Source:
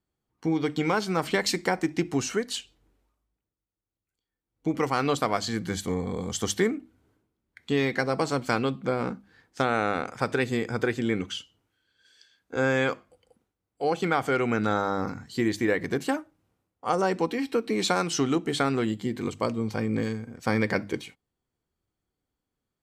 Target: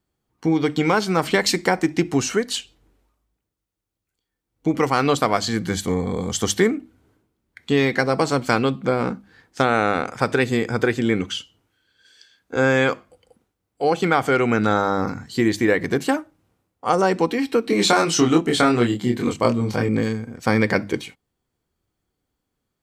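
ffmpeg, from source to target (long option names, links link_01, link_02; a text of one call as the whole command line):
ffmpeg -i in.wav -filter_complex "[0:a]asettb=1/sr,asplit=3[link_01][link_02][link_03];[link_01]atrim=end=17.664[link_04];[link_02]atrim=start=17.66:end=19.89,asetpts=PTS-STARTPTS,afade=type=in:duration=0.004:curve=qsin,afade=type=out:start_time=2.226:duration=0.004:curve=qsin,asplit=2[link_05][link_06];[link_06]adelay=25,volume=-3dB[link_07];[link_05][link_07]amix=inputs=2:normalize=0,atrim=end_sample=98343[link_08];[link_03]atrim=start=19.886[link_09];[link_04][link_08]acrossfade=duration=0.004:curve1=hsin:curve2=qsin[link_10];[link_10][link_09]acrossfade=duration=0.004:curve1=qsin:curve2=hsin,volume=6.5dB" out.wav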